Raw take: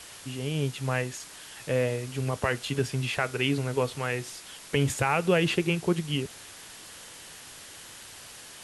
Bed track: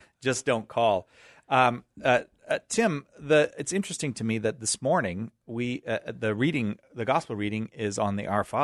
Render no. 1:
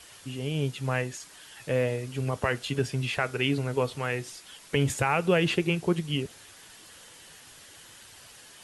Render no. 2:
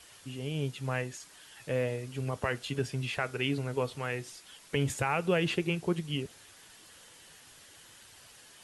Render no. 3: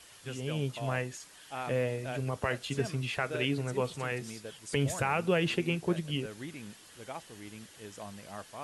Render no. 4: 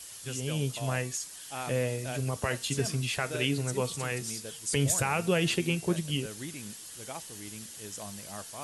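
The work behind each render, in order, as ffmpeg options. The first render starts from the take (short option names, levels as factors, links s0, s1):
-af "afftdn=nr=6:nf=-46"
-af "volume=0.596"
-filter_complex "[1:a]volume=0.133[s0];[0:a][s0]amix=inputs=2:normalize=0"
-af "bass=f=250:g=3,treble=f=4000:g=13,bandreject=f=228.4:t=h:w=4,bandreject=f=456.8:t=h:w=4,bandreject=f=685.2:t=h:w=4,bandreject=f=913.6:t=h:w=4,bandreject=f=1142:t=h:w=4,bandreject=f=1370.4:t=h:w=4,bandreject=f=1598.8:t=h:w=4,bandreject=f=1827.2:t=h:w=4,bandreject=f=2055.6:t=h:w=4,bandreject=f=2284:t=h:w=4,bandreject=f=2512.4:t=h:w=4,bandreject=f=2740.8:t=h:w=4,bandreject=f=2969.2:t=h:w=4,bandreject=f=3197.6:t=h:w=4,bandreject=f=3426:t=h:w=4,bandreject=f=3654.4:t=h:w=4,bandreject=f=3882.8:t=h:w=4,bandreject=f=4111.2:t=h:w=4,bandreject=f=4339.6:t=h:w=4,bandreject=f=4568:t=h:w=4,bandreject=f=4796.4:t=h:w=4,bandreject=f=5024.8:t=h:w=4,bandreject=f=5253.2:t=h:w=4,bandreject=f=5481.6:t=h:w=4,bandreject=f=5710:t=h:w=4,bandreject=f=5938.4:t=h:w=4,bandreject=f=6166.8:t=h:w=4"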